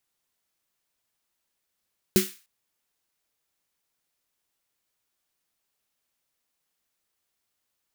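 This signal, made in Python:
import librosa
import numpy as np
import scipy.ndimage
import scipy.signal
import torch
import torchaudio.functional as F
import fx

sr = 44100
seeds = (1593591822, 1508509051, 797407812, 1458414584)

y = fx.drum_snare(sr, seeds[0], length_s=0.3, hz=200.0, second_hz=370.0, noise_db=-6, noise_from_hz=1500.0, decay_s=0.19, noise_decay_s=0.37)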